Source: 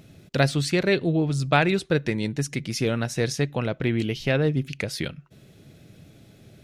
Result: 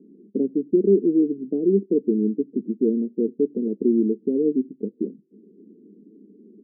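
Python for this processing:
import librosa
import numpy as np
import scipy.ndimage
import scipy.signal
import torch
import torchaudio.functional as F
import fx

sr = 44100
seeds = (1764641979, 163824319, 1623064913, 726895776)

y = scipy.signal.sosfilt(scipy.signal.cheby1(4, 1.0, [200.0, 440.0], 'bandpass', fs=sr, output='sos'), x)
y = y * librosa.db_to_amplitude(7.5)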